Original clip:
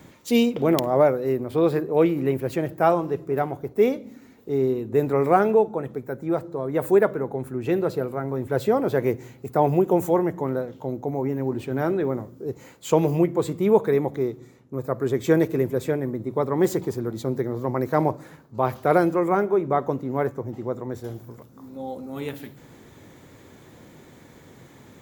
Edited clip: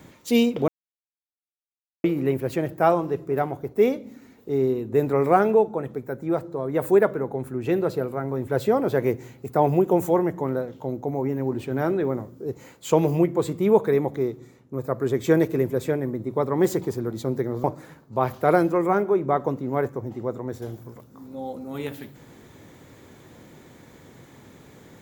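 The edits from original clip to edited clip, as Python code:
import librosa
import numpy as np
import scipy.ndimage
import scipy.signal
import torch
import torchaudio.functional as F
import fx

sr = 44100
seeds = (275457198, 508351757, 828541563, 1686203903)

y = fx.edit(x, sr, fx.silence(start_s=0.68, length_s=1.36),
    fx.cut(start_s=17.64, length_s=0.42), tone=tone)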